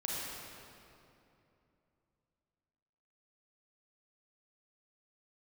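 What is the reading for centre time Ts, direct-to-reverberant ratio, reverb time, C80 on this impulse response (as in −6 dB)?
172 ms, −5.0 dB, 2.8 s, −2.0 dB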